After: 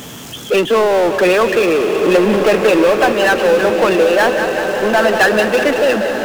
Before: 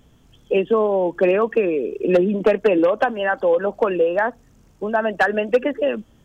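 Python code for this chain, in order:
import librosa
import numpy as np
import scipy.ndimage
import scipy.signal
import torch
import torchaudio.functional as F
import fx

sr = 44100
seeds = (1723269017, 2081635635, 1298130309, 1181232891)

p1 = scipy.signal.sosfilt(scipy.signal.butter(2, 120.0, 'highpass', fs=sr, output='sos'), x)
p2 = fx.tilt_eq(p1, sr, slope=2.0)
p3 = p2 + fx.echo_split(p2, sr, split_hz=470.0, low_ms=261, high_ms=188, feedback_pct=52, wet_db=-14.0, dry=0)
p4 = fx.power_curve(p3, sr, exponent=0.5)
p5 = fx.rev_bloom(p4, sr, seeds[0], attack_ms=1600, drr_db=6.0)
y = F.gain(torch.from_numpy(p5), 1.0).numpy()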